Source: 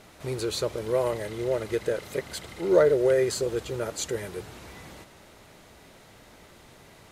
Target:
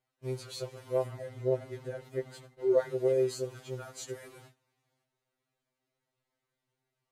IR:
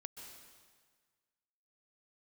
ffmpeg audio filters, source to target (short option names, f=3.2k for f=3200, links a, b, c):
-filter_complex "[0:a]agate=range=-23dB:threshold=-40dB:ratio=16:detection=peak,asettb=1/sr,asplit=3[a][b][c];[a]atrim=end=1.064[d];[b]atrim=start=1.06:end=2.79,asetpts=PTS-STARTPTS,afade=t=in:d=0.004:c=qsin,afade=t=out:st=1.726:d=0.004:c=qsin,tiltshelf=f=1.1k:g=6[e];[c]atrim=start=2.786[f];[d][e]acrossfade=d=0.004:c1=hsin:c2=qsin[g];[g][f]acrossfade=d=0.004:c1=qsin:c2=hsin,afftfilt=real='re*2.45*eq(mod(b,6),0)':imag='im*2.45*eq(mod(b,6),0)':win_size=2048:overlap=0.75,volume=-8.5dB"